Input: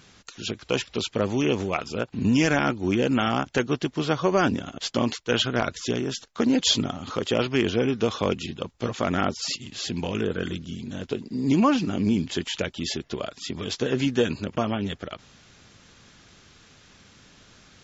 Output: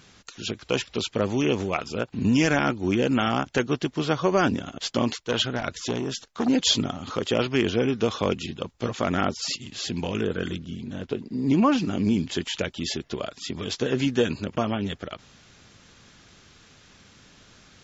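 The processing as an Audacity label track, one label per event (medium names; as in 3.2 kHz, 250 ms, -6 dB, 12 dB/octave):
5.250000	6.480000	transformer saturation saturates under 880 Hz
10.560000	11.720000	treble shelf 5 kHz -11 dB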